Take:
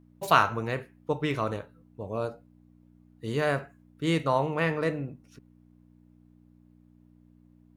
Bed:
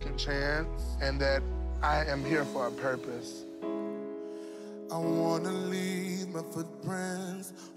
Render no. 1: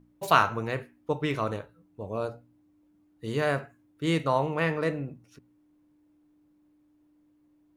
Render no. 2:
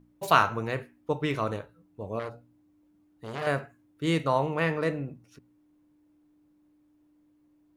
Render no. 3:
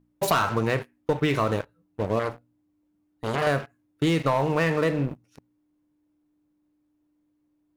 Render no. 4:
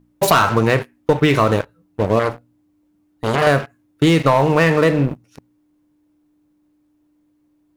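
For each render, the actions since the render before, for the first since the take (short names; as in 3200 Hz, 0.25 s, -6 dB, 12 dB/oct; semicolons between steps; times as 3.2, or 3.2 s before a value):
de-hum 60 Hz, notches 4
2.19–3.47 core saturation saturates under 1900 Hz
sample leveller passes 3; compressor 6:1, threshold -20 dBFS, peak gain reduction 9.5 dB
gain +9 dB; limiter -3 dBFS, peak gain reduction 1 dB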